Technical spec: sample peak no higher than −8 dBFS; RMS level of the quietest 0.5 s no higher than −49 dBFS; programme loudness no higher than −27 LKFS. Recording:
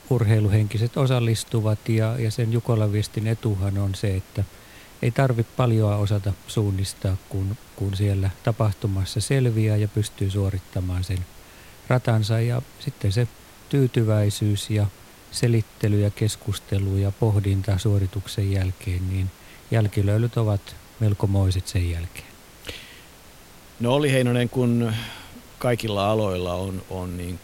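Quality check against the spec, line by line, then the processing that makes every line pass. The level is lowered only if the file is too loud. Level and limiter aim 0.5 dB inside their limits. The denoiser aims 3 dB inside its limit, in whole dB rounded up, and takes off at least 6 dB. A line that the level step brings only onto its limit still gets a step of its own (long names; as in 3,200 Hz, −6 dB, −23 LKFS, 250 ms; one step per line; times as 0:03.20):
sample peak −5.5 dBFS: out of spec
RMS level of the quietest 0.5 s −47 dBFS: out of spec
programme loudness −24.0 LKFS: out of spec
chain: level −3.5 dB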